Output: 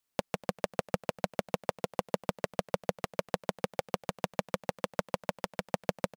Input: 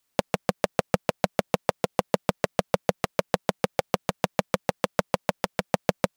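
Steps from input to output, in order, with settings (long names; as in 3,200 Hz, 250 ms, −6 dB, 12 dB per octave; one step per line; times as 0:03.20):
single-tap delay 245 ms −22 dB
level −8 dB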